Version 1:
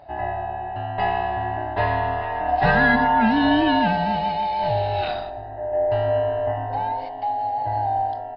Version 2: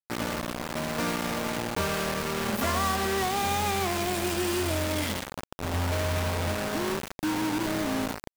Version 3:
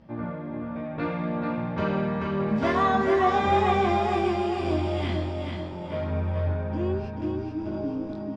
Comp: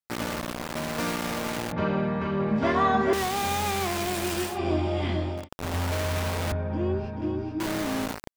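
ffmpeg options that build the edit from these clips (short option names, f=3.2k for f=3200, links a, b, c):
-filter_complex "[2:a]asplit=3[a][b][c];[1:a]asplit=4[d][e][f][g];[d]atrim=end=1.722[h];[a]atrim=start=1.718:end=3.132[i];[e]atrim=start=3.128:end=4.59[j];[b]atrim=start=4.43:end=5.49[k];[f]atrim=start=5.33:end=6.522[l];[c]atrim=start=6.518:end=7.602[m];[g]atrim=start=7.598[n];[h][i]acrossfade=d=0.004:c1=hsin:c2=hsin[o];[o][j]acrossfade=d=0.004:c1=hsin:c2=hsin[p];[p][k]acrossfade=d=0.16:c1=tri:c2=tri[q];[q][l]acrossfade=d=0.16:c1=tri:c2=tri[r];[r][m]acrossfade=d=0.004:c1=hsin:c2=hsin[s];[s][n]acrossfade=d=0.004:c1=hsin:c2=hsin"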